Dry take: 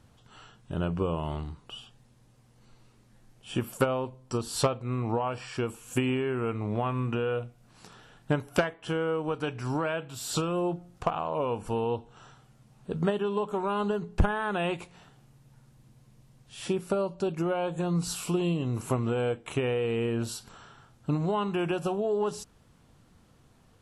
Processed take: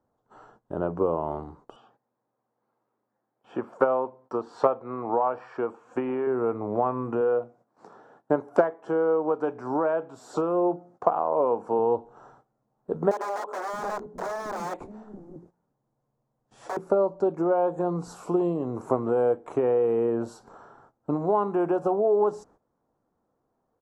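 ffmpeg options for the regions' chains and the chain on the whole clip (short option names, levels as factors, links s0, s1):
-filter_complex "[0:a]asettb=1/sr,asplit=3[s0][s1][s2];[s0]atrim=end=1.764[s3];[s1]atrim=start=1.76:end=6.27,asetpts=PTS-STARTPTS,afade=t=in:d=0.004:c=qsin,afade=t=out:st=4.506:d=0.004:c=qsin,highpass=120,lowpass=2900,tiltshelf=f=770:g=-5[s4];[s2]atrim=start=6.266[s5];[s3][s4]acrossfade=d=0.004:c1=hsin:c2=qsin[s6];[s6][s5]acrossfade=d=0.004:c1=qsin:c2=hsin,asettb=1/sr,asplit=3[s7][s8][s9];[s7]atrim=end=7.214[s10];[s8]atrim=start=7.21:end=11.79,asetpts=PTS-STARTPTS,afade=t=in:d=0.004:c=qsin,afade=t=out:st=4.576:d=0.004:c=qsin,highpass=150,highshelf=f=11000:g=-10.5[s11];[s9]atrim=start=11.786[s12];[s10][s11]acrossfade=d=0.004:c1=hsin:c2=qsin[s13];[s13][s12]acrossfade=d=0.004:c1=qsin:c2=hsin,asettb=1/sr,asplit=3[s14][s15][s16];[s14]atrim=end=13.114[s17];[s15]atrim=start=13.11:end=16.77,asetpts=PTS-STARTPTS,afade=t=in:d=0.004:c=qsin,afade=t=out:st=3.656:d=0.004:c=qsin,aeval=exprs='(mod(22.4*val(0)+1,2)-1)/22.4':c=same,acrossover=split=320[s18][s19];[s18]adelay=620[s20];[s20][s19]amix=inputs=2:normalize=0,atrim=end_sample=161406[s21];[s16]atrim=start=16.766[s22];[s17][s21]acrossfade=d=0.004:c1=hsin:c2=qsin[s23];[s23][s22]acrossfade=d=0.004:c1=qsin:c2=hsin,acrossover=split=280 5700:gain=0.141 1 0.112[s24][s25][s26];[s24][s25][s26]amix=inputs=3:normalize=0,agate=range=0.178:threshold=0.00112:ratio=16:detection=peak,firequalizer=gain_entry='entry(800,0);entry(2800,-28);entry(6700,-10)':delay=0.05:min_phase=1,volume=2.37"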